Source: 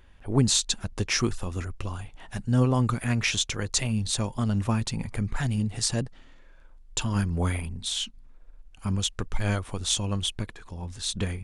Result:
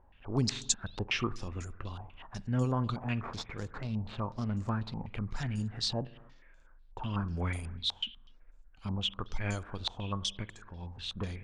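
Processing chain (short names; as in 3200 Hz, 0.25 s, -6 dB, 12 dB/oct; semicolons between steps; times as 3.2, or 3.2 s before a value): 3.16–5.14 median filter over 15 samples; dynamic EQ 1900 Hz, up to -4 dB, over -49 dBFS, Q 1.5; on a send at -16 dB: reverb, pre-delay 46 ms; on the sum: stepped low-pass 8.1 Hz 850–7200 Hz; gain -8 dB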